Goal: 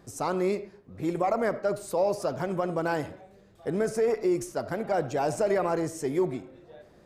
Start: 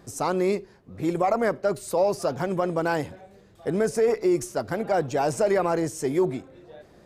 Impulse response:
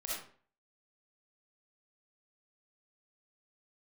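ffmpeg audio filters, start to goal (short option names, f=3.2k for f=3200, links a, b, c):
-filter_complex "[0:a]asplit=2[a][b];[1:a]atrim=start_sample=2205,lowpass=3.6k[c];[b][c]afir=irnorm=-1:irlink=0,volume=-12.5dB[d];[a][d]amix=inputs=2:normalize=0,volume=-4.5dB"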